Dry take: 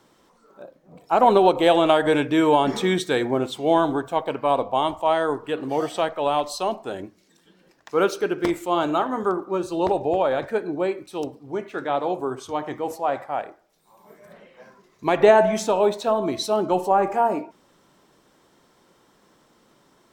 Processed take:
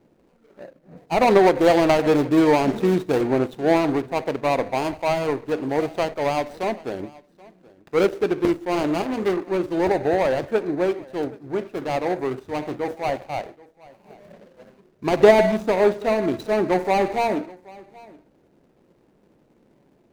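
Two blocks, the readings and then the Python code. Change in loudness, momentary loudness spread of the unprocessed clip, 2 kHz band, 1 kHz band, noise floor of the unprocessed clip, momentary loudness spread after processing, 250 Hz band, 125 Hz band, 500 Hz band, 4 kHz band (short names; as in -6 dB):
+0.5 dB, 13 LU, +1.5 dB, -2.5 dB, -61 dBFS, 13 LU, +2.5 dB, +4.0 dB, +1.0 dB, -3.0 dB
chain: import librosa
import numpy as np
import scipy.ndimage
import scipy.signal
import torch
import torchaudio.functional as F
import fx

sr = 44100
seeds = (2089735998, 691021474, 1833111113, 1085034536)

y = scipy.signal.medfilt(x, 41)
y = y + 10.0 ** (-23.0 / 20.0) * np.pad(y, (int(778 * sr / 1000.0), 0))[:len(y)]
y = y * librosa.db_to_amplitude(3.5)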